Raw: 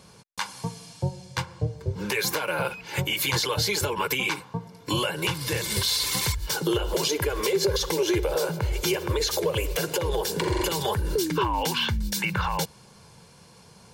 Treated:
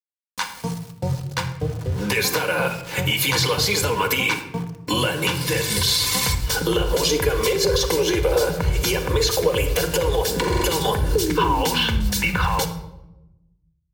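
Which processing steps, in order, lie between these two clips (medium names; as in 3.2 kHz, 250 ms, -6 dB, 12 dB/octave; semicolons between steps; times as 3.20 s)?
small samples zeroed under -38 dBFS; simulated room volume 3500 m³, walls furnished, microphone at 1.9 m; trim +4 dB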